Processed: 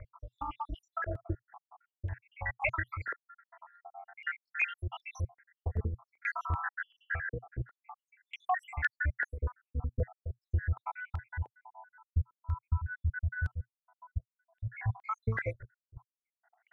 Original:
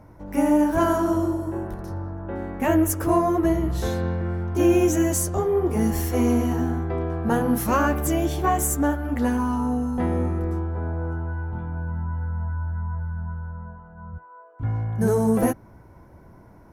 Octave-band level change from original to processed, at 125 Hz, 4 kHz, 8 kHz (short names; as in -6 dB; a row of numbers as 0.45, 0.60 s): -10.0 dB, -14.0 dB, under -30 dB